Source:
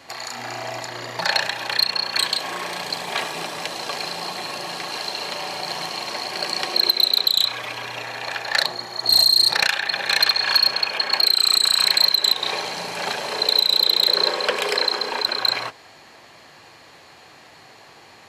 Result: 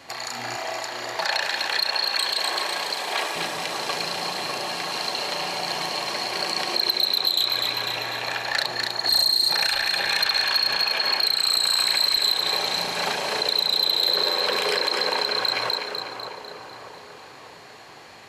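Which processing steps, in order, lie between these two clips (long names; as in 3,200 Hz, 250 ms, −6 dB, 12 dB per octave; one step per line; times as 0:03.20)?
0:00.56–0:03.36: high-pass filter 330 Hz 12 dB per octave
echo with a time of its own for lows and highs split 1,400 Hz, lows 594 ms, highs 249 ms, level −7 dB
brickwall limiter −12.5 dBFS, peak gain reduction 8 dB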